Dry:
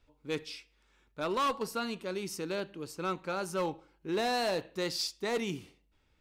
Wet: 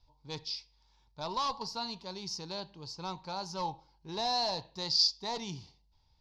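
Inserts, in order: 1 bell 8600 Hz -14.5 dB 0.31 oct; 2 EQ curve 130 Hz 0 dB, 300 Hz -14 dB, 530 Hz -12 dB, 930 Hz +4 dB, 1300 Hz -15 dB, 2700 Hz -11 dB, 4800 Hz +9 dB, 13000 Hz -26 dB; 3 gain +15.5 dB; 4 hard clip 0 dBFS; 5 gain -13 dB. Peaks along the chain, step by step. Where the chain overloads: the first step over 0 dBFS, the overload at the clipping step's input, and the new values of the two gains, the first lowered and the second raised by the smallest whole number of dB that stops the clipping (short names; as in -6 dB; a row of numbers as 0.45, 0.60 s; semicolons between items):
-24.5, -18.0, -2.5, -2.5, -15.5 dBFS; no overload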